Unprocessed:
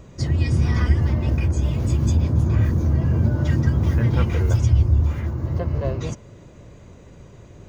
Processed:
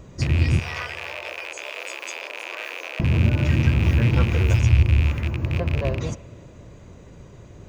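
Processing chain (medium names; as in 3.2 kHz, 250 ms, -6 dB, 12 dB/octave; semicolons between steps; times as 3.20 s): rattle on loud lows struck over -21 dBFS, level -19 dBFS; 0.59–3.00 s: steep high-pass 480 Hz 36 dB/octave; spring tank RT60 1.5 s, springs 59 ms, DRR 16.5 dB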